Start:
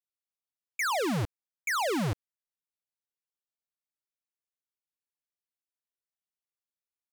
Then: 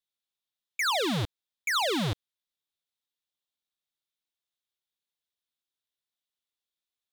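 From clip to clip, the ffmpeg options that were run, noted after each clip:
-af "equalizer=f=3.6k:w=2.5:g=12.5"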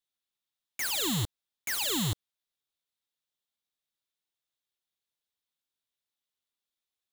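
-af "aeval=exprs='(mod(22.4*val(0)+1,2)-1)/22.4':c=same"

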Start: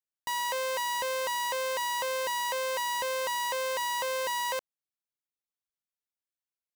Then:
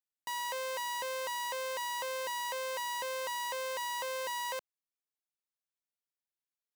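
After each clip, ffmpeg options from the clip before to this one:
-af "highpass=f=170:p=1,volume=-5.5dB"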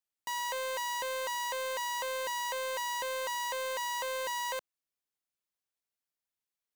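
-af "acrusher=bits=3:mode=log:mix=0:aa=0.000001,aeval=exprs='0.0316*(cos(1*acos(clip(val(0)/0.0316,-1,1)))-cos(1*PI/2))+0.000708*(cos(2*acos(clip(val(0)/0.0316,-1,1)))-cos(2*PI/2))':c=same,volume=1.5dB"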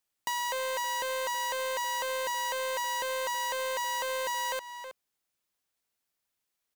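-filter_complex "[0:a]asplit=2[a][b];[b]adelay=320.7,volume=-14dB,highshelf=f=4k:g=-7.22[c];[a][c]amix=inputs=2:normalize=0,acompressor=threshold=-38dB:ratio=4,volume=8dB"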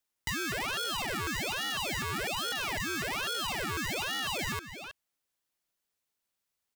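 -af "aeval=exprs='val(0)*sin(2*PI*1500*n/s+1500*0.6/1.2*sin(2*PI*1.2*n/s))':c=same,volume=1.5dB"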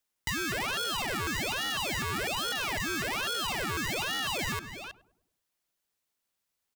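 -filter_complex "[0:a]asplit=2[a][b];[b]adelay=102,lowpass=f=820:p=1,volume=-14dB,asplit=2[c][d];[d]adelay=102,lowpass=f=820:p=1,volume=0.52,asplit=2[e][f];[f]adelay=102,lowpass=f=820:p=1,volume=0.52,asplit=2[g][h];[h]adelay=102,lowpass=f=820:p=1,volume=0.52,asplit=2[i][j];[j]adelay=102,lowpass=f=820:p=1,volume=0.52[k];[a][c][e][g][i][k]amix=inputs=6:normalize=0,volume=1.5dB"

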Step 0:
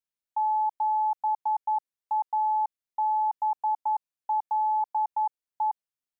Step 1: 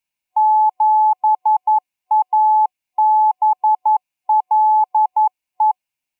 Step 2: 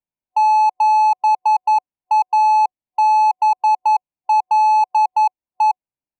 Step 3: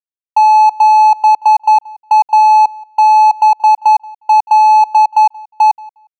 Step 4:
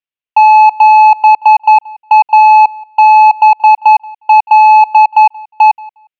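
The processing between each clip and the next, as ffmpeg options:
-af "superequalizer=7b=0.562:9b=1.58:10b=0.631:12b=2.82,volume=8dB"
-af "adynamicsmooth=sensitivity=1.5:basefreq=860"
-filter_complex "[0:a]aeval=exprs='sgn(val(0))*max(abs(val(0))-0.00422,0)':c=same,asplit=2[a][b];[b]adelay=179,lowpass=f=4.1k:p=1,volume=-23dB,asplit=2[c][d];[d]adelay=179,lowpass=f=4.1k:p=1,volume=0.17[e];[a][c][e]amix=inputs=3:normalize=0,volume=6.5dB"
-af "lowpass=f=2.8k:t=q:w=3.1,volume=2dB"

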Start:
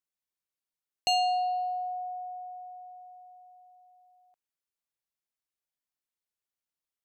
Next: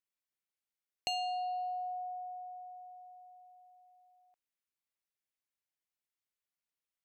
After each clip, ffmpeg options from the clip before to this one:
-af "acompressor=threshold=-30dB:ratio=6,equalizer=f=2.2k:w=1.5:g=4.5,volume=-4.5dB"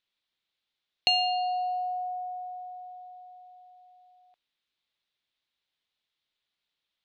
-af "lowpass=f=3.7k:t=q:w=3.9,volume=7dB"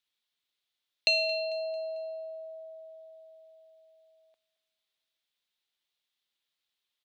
-af "bass=f=250:g=-8,treble=f=4k:g=7,aecho=1:1:223|446|669|892:0.112|0.0516|0.0237|0.0109,afreqshift=-86,volume=-3.5dB"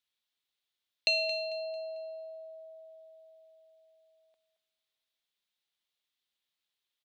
-af "aecho=1:1:223:0.15,volume=-2.5dB"

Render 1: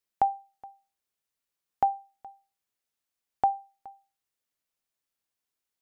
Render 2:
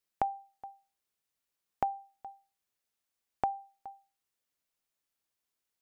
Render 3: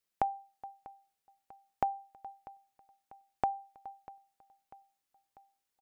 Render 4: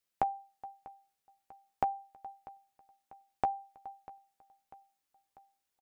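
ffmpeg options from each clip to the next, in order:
-af "acompressor=threshold=-28dB:ratio=5"
-af "aecho=1:1:644|1288|1932|2576:0.1|0.056|0.0314|0.0176"
-filter_complex "[0:a]asplit=2[a][b];[b]adelay=13,volume=-10.5dB[c];[a][c]amix=inputs=2:normalize=0"

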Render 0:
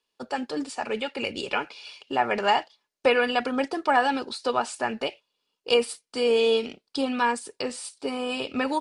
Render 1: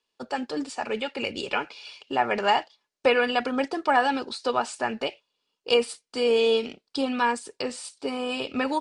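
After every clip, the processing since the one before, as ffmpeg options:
-af "lowpass=f=9.2k:w=0.5412,lowpass=f=9.2k:w=1.3066"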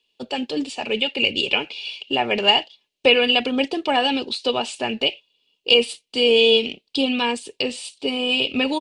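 -af "firequalizer=gain_entry='entry(390,0);entry(1400,-13);entry(2800,10);entry(5200,-3)':delay=0.05:min_phase=1,alimiter=level_in=6.5dB:limit=-1dB:release=50:level=0:latency=1,volume=-1dB"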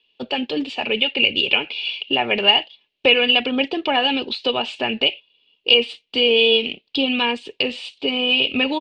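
-filter_complex "[0:a]asplit=2[a][b];[b]acompressor=threshold=-25dB:ratio=6,volume=2dB[c];[a][c]amix=inputs=2:normalize=0,lowpass=f=3k:t=q:w=1.5,volume=-4dB"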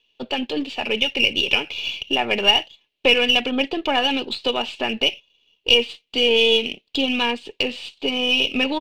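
-af "aeval=exprs='if(lt(val(0),0),0.708*val(0),val(0))':c=same"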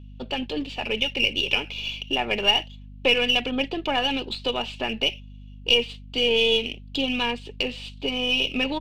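-af "aeval=exprs='val(0)+0.0141*(sin(2*PI*50*n/s)+sin(2*PI*2*50*n/s)/2+sin(2*PI*3*50*n/s)/3+sin(2*PI*4*50*n/s)/4+sin(2*PI*5*50*n/s)/5)':c=same,volume=-4dB"

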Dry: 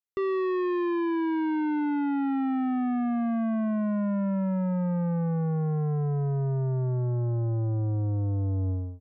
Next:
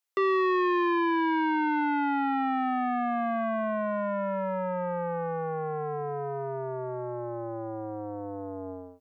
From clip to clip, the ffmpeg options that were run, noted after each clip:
-af "highpass=550,volume=8.5dB"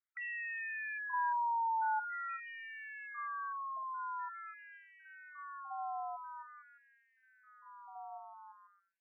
-af "highpass=f=410:t=q:w=4.9,afftfilt=real='re*between(b*sr/1024,970*pow(2300/970,0.5+0.5*sin(2*PI*0.46*pts/sr))/1.41,970*pow(2300/970,0.5+0.5*sin(2*PI*0.46*pts/sr))*1.41)':imag='im*between(b*sr/1024,970*pow(2300/970,0.5+0.5*sin(2*PI*0.46*pts/sr))/1.41,970*pow(2300/970,0.5+0.5*sin(2*PI*0.46*pts/sr))*1.41)':win_size=1024:overlap=0.75,volume=-5dB"

